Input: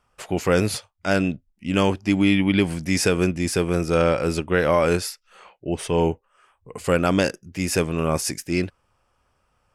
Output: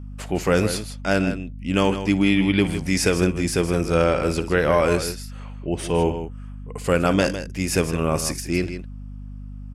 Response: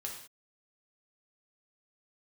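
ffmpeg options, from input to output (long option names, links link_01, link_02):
-filter_complex "[0:a]asplit=2[link_01][link_02];[link_02]aecho=0:1:58|158:0.126|0.299[link_03];[link_01][link_03]amix=inputs=2:normalize=0,aeval=exprs='val(0)+0.02*(sin(2*PI*50*n/s)+sin(2*PI*2*50*n/s)/2+sin(2*PI*3*50*n/s)/3+sin(2*PI*4*50*n/s)/4+sin(2*PI*5*50*n/s)/5)':channel_layout=same"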